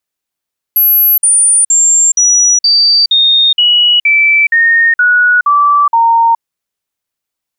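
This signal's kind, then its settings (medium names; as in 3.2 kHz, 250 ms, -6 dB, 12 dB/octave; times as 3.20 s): stepped sine 11.7 kHz down, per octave 3, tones 12, 0.42 s, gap 0.05 s -5 dBFS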